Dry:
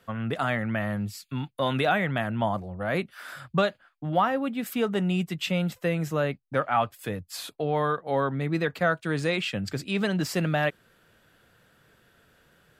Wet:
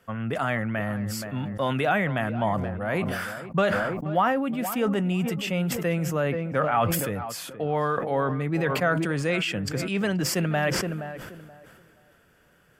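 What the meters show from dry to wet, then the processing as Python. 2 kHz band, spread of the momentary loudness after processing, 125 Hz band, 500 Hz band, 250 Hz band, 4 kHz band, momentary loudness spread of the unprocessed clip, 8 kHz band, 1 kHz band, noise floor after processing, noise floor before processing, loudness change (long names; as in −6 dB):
+1.5 dB, 7 LU, +2.0 dB, +1.5 dB, +2.0 dB, +0.5 dB, 7 LU, +7.5 dB, +1.0 dB, −60 dBFS, −63 dBFS, +1.5 dB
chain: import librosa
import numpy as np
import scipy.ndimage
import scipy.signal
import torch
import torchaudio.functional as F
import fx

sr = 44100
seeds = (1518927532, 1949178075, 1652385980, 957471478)

p1 = fx.peak_eq(x, sr, hz=3900.0, db=-11.0, octaves=0.27)
p2 = p1 + fx.echo_tape(p1, sr, ms=475, feedback_pct=31, wet_db=-12, lp_hz=1500.0, drive_db=15.0, wow_cents=33, dry=0)
y = fx.sustainer(p2, sr, db_per_s=29.0)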